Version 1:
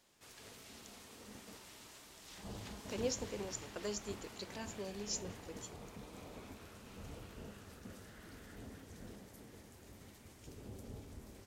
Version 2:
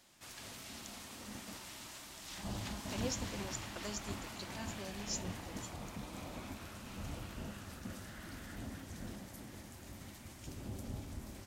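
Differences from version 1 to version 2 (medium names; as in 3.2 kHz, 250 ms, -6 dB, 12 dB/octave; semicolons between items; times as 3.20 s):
background +6.5 dB; master: add peaking EQ 440 Hz -12.5 dB 0.28 oct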